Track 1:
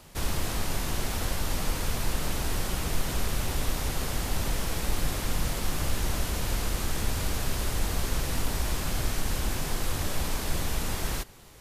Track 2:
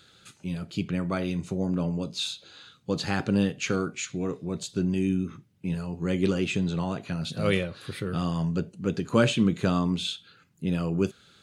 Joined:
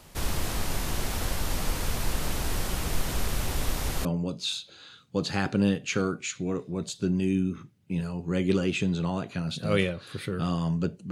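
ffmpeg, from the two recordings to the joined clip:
-filter_complex "[0:a]apad=whole_dur=11.11,atrim=end=11.11,atrim=end=4.052[a];[1:a]atrim=start=1.788:end=8.85[b];[a][b]acrossfade=d=0.004:c1=hsin:c2=hsin"

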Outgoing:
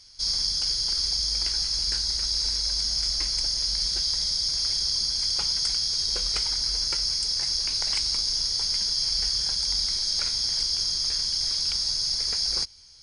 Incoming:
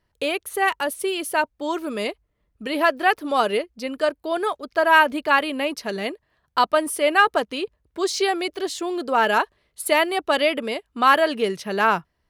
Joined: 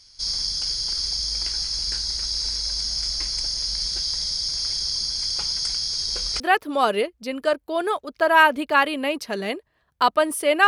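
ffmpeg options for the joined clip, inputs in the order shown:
-filter_complex "[0:a]apad=whole_dur=10.67,atrim=end=10.67,atrim=end=6.402[a];[1:a]atrim=start=2.958:end=7.23[b];[a][b]acrossfade=d=0.004:c1=hsin:c2=hsin"

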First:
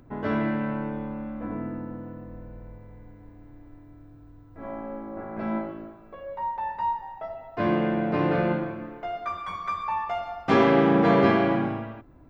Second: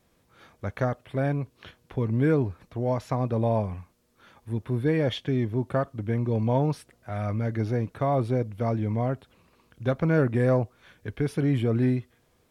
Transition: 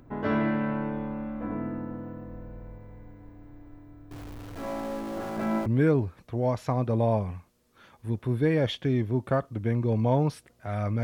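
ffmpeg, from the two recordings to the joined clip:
-filter_complex "[0:a]asettb=1/sr,asplit=3[a][b][c];[a]atrim=end=4.114[d];[b]atrim=start=4.11:end=5.66,asetpts=PTS-STARTPTS,afade=t=in:d=0.004:c=qsin,afade=t=out:st=1.546:d=0.004:c=qsin,aeval=exprs='val(0)+0.5*0.0126*sgn(val(0))':c=same[e];[c]atrim=start=5.656[f];[d][e]acrossfade=d=0.004:c1=hsin:c2=qsin[g];[g][f]acrossfade=d=0.004:c1=qsin:c2=hsin,apad=whole_dur=11.03,atrim=end=11.03,atrim=end=5.662[h];[1:a]atrim=start=2.088:end=7.46[i];[h][i]acrossfade=d=0.004:c1=hsin:c2=hsin"

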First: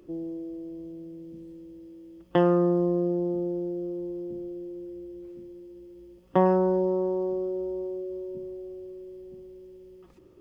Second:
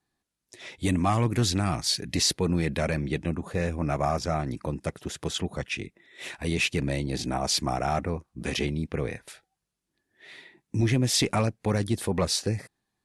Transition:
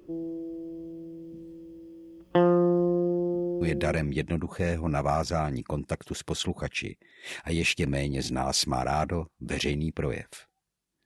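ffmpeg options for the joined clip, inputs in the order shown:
-filter_complex "[0:a]apad=whole_dur=11.05,atrim=end=11.05,atrim=end=3.97,asetpts=PTS-STARTPTS[a];[1:a]atrim=start=2.56:end=10,asetpts=PTS-STARTPTS[b];[a][b]acrossfade=d=0.36:c1=log:c2=log"

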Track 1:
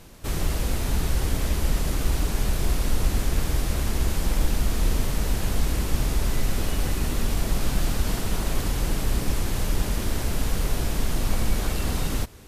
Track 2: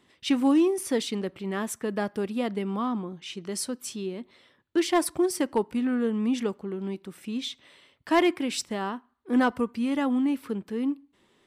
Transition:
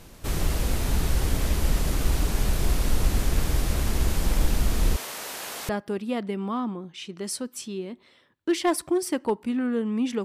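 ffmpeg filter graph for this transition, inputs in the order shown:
-filter_complex "[0:a]asettb=1/sr,asplit=3[a][b][c];[a]atrim=end=4.964[d];[b]atrim=start=4.96:end=5.69,asetpts=PTS-STARTPTS,afade=t=in:d=0.004:c=qsin,afade=t=out:st=0.726:d=0.004:c=qsin,highpass=640[e];[c]atrim=start=5.686[f];[d][e]acrossfade=d=0.004:c1=hsin:c2=qsin[g];[g][f]acrossfade=d=0.004:c1=qsin:c2=hsin,apad=whole_dur=10.24,atrim=end=10.24,atrim=end=5.692[h];[1:a]atrim=start=1.968:end=6.52[i];[h][i]acrossfade=d=0.004:c1=hsin:c2=hsin"

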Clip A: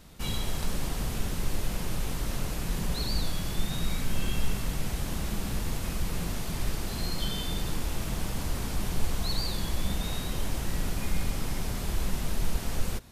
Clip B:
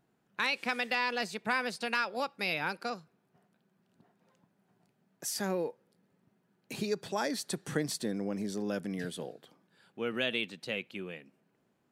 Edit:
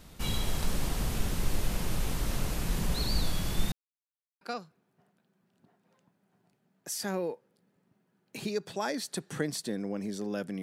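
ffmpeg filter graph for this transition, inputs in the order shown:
-filter_complex "[0:a]apad=whole_dur=10.62,atrim=end=10.62,asplit=2[a][b];[a]atrim=end=3.72,asetpts=PTS-STARTPTS,afade=t=out:st=3.716:d=0.004:c=hsin[c];[b]atrim=start=3.72:end=4.41,asetpts=PTS-STARTPTS,volume=0[d];[1:a]atrim=start=2.77:end=8.98,asetpts=PTS-STARTPTS,afade=t=in:d=0.004:c=hsin[e];[c][d][e]concat=n=3:v=0:a=1"

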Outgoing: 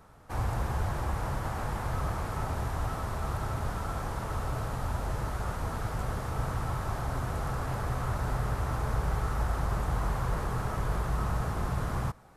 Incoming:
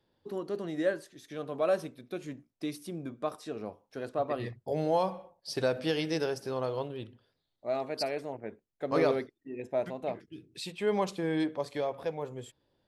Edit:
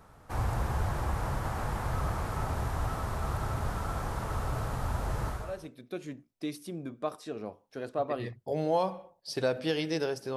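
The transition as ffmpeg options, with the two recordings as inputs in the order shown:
-filter_complex "[0:a]apad=whole_dur=10.36,atrim=end=10.36,atrim=end=5.74,asetpts=PTS-STARTPTS[a];[1:a]atrim=start=1.48:end=6.56,asetpts=PTS-STARTPTS[b];[a][b]acrossfade=d=0.46:c1=qua:c2=qua"

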